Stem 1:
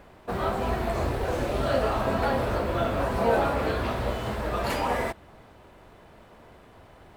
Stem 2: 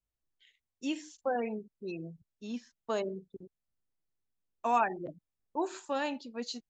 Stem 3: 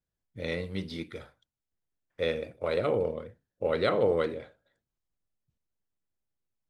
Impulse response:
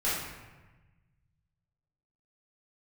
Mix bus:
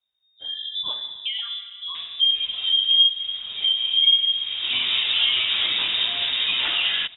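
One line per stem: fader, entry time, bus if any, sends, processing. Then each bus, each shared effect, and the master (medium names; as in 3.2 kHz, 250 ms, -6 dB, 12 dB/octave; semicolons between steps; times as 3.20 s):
-5.0 dB, 1.95 s, no send, auto duck -15 dB, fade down 0.30 s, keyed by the third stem
-16.0 dB, 0.00 s, send -14.5 dB, none
+3.0 dB, 0.00 s, send -4.5 dB, integer overflow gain 18.5 dB; spectral contrast expander 4:1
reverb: on, RT60 1.2 s, pre-delay 4 ms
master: level rider gain up to 8 dB; frequency inversion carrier 3.7 kHz; three bands compressed up and down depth 70%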